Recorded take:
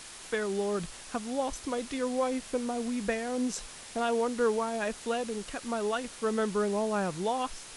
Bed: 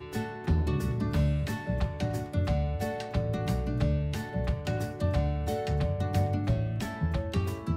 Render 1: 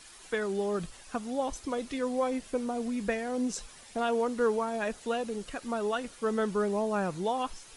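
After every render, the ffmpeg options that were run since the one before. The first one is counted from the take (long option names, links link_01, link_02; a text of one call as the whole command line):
ffmpeg -i in.wav -af "afftdn=noise_reduction=9:noise_floor=-47" out.wav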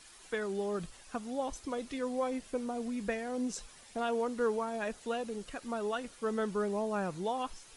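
ffmpeg -i in.wav -af "volume=-4dB" out.wav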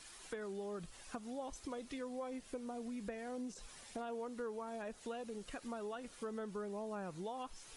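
ffmpeg -i in.wav -filter_complex "[0:a]acrossover=split=1100[link_01][link_02];[link_02]alimiter=level_in=11.5dB:limit=-24dB:level=0:latency=1:release=96,volume=-11.5dB[link_03];[link_01][link_03]amix=inputs=2:normalize=0,acompressor=threshold=-44dB:ratio=3" out.wav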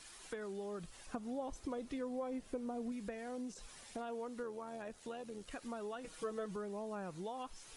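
ffmpeg -i in.wav -filter_complex "[0:a]asettb=1/sr,asplit=3[link_01][link_02][link_03];[link_01]atrim=end=1.064[link_04];[link_02]atrim=start=1.06:end=2.92,asetpts=PTS-STARTPTS,afade=type=in:duration=0.004:curve=qsin,afade=type=out:start_time=1.856:duration=0.004:curve=qsin,tiltshelf=frequency=1200:gain=4[link_05];[link_03]atrim=start=2.916[link_06];[link_04][link_05]acrossfade=duration=0.004:curve1=hsin:curve2=qsin[link_07];[link_07][link_06]acrossfade=duration=0.004:curve1=qsin:curve2=hsin,asettb=1/sr,asplit=3[link_08][link_09][link_10];[link_08]atrim=end=4.434[link_11];[link_09]atrim=start=4.43:end=5.51,asetpts=PTS-STARTPTS,afade=type=in:duration=0.004:curve=qsin,afade=type=out:start_time=1.076:duration=0.004:curve=qsin,tremolo=f=85:d=0.4[link_12];[link_10]atrim=start=5.506[link_13];[link_11][link_12]acrossfade=duration=0.004:curve1=hsin:curve2=qsin[link_14];[link_14][link_13]acrossfade=duration=0.004:curve1=qsin:curve2=hsin,asettb=1/sr,asplit=3[link_15][link_16][link_17];[link_15]atrim=end=6.044[link_18];[link_16]atrim=start=6.04:end=6.56,asetpts=PTS-STARTPTS,afade=type=in:duration=0.004:curve=qsin,afade=type=out:start_time=0.516:duration=0.004:curve=qsin,aecho=1:1:6.3:0.9,atrim=end_sample=22932[link_19];[link_17]atrim=start=6.556[link_20];[link_18][link_19]acrossfade=duration=0.004:curve1=hsin:curve2=qsin[link_21];[link_21][link_20]acrossfade=duration=0.004:curve1=qsin:curve2=hsin" out.wav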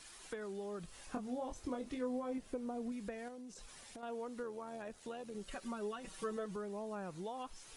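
ffmpeg -i in.wav -filter_complex "[0:a]asettb=1/sr,asplit=3[link_01][link_02][link_03];[link_01]atrim=end=0.864[link_04];[link_02]atrim=start=0.86:end=2.38,asetpts=PTS-STARTPTS,afade=type=in:duration=0.004:curve=qsin,afade=type=out:start_time=1.516:duration=0.004:curve=qsin,asplit=2[link_05][link_06];[link_06]adelay=24,volume=-5dB[link_07];[link_05][link_07]amix=inputs=2:normalize=0,atrim=end_sample=67032[link_08];[link_03]atrim=start=2.376[link_09];[link_04][link_08]acrossfade=duration=0.004:curve1=hsin:curve2=qsin[link_10];[link_10][link_09]acrossfade=duration=0.004:curve1=qsin:curve2=hsin,asettb=1/sr,asplit=3[link_11][link_12][link_13];[link_11]atrim=end=3.284[link_14];[link_12]atrim=start=3.28:end=4.03,asetpts=PTS-STARTPTS,afade=type=in:duration=0.004:curve=qsin,afade=type=out:start_time=0.746:duration=0.004:curve=qsin,acompressor=threshold=-49dB:ratio=3:attack=3.2:release=140:knee=1:detection=peak[link_15];[link_13]atrim=start=4.026[link_16];[link_14][link_15]acrossfade=duration=0.004:curve1=hsin:curve2=qsin[link_17];[link_17][link_16]acrossfade=duration=0.004:curve1=qsin:curve2=hsin,asettb=1/sr,asplit=3[link_18][link_19][link_20];[link_18]atrim=end=5.344[link_21];[link_19]atrim=start=5.34:end=6.37,asetpts=PTS-STARTPTS,afade=type=in:duration=0.004:curve=qsin,afade=type=out:start_time=1.026:duration=0.004:curve=qsin,aecho=1:1:5.2:0.72,atrim=end_sample=45423[link_22];[link_20]atrim=start=6.366[link_23];[link_21][link_22]acrossfade=duration=0.004:curve1=hsin:curve2=qsin[link_24];[link_24][link_23]acrossfade=duration=0.004:curve1=qsin:curve2=hsin" out.wav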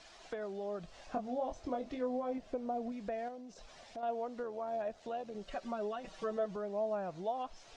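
ffmpeg -i in.wav -af "lowpass=frequency=6000:width=0.5412,lowpass=frequency=6000:width=1.3066,equalizer=frequency=660:width_type=o:width=0.47:gain=13.5" out.wav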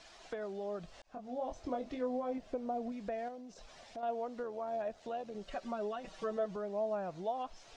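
ffmpeg -i in.wav -filter_complex "[0:a]asplit=2[link_01][link_02];[link_01]atrim=end=1.02,asetpts=PTS-STARTPTS,afade=type=out:start_time=1.016:duration=0.004:curve=hsin[link_03];[link_02]atrim=start=1.02,asetpts=PTS-STARTPTS,afade=type=in:duration=0.67:curve=qsin[link_04];[link_03][link_04]concat=n=2:v=0:a=1" out.wav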